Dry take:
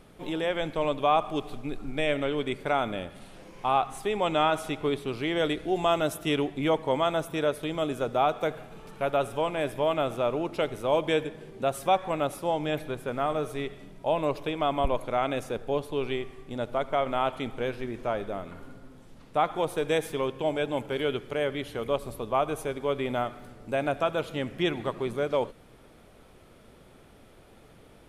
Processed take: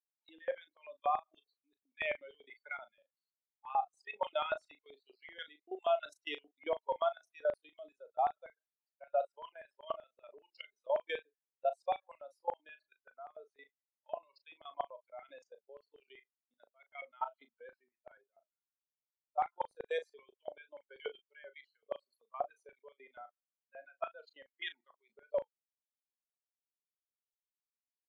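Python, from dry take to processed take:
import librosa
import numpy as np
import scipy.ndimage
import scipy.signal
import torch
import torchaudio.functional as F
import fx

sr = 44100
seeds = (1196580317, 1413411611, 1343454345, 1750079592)

y = fx.bin_expand(x, sr, power=3.0)
y = scipy.signal.sosfilt(scipy.signal.bessel(8, 500.0, 'highpass', norm='mag', fs=sr, output='sos'), y)
y = fx.high_shelf(y, sr, hz=3000.0, db=6.5)
y = fx.level_steps(y, sr, step_db=18)
y = fx.filter_lfo_highpass(y, sr, shape='square', hz=5.2, low_hz=640.0, high_hz=2000.0, q=1.8)
y = fx.spacing_loss(y, sr, db_at_10k=32)
y = fx.doubler(y, sr, ms=37.0, db=-12.0)
y = y * librosa.db_to_amplitude(5.0)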